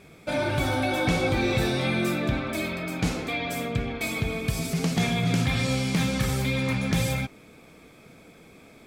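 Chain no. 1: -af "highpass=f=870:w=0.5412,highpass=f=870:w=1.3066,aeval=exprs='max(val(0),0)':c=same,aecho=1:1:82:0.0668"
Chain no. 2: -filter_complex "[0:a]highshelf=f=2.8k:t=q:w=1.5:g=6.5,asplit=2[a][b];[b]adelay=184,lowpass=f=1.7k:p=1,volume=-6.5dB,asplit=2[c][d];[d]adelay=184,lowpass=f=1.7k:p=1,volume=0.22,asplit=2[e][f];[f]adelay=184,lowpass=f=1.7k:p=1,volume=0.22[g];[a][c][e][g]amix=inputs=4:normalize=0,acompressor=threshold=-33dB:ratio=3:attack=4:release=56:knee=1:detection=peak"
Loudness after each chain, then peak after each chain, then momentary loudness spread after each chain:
-36.0, -32.5 LUFS; -16.0, -19.0 dBFS; 5, 17 LU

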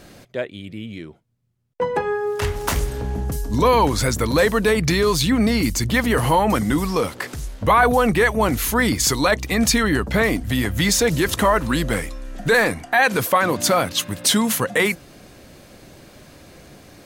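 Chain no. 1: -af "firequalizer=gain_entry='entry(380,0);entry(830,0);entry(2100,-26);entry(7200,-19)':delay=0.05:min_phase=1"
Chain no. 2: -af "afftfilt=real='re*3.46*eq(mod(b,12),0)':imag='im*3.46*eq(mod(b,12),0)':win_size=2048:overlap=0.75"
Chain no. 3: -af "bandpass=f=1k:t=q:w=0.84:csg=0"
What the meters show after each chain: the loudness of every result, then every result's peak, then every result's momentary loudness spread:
-21.5, -21.0, -23.5 LUFS; -7.0, -2.0, -7.0 dBFS; 12, 16, 14 LU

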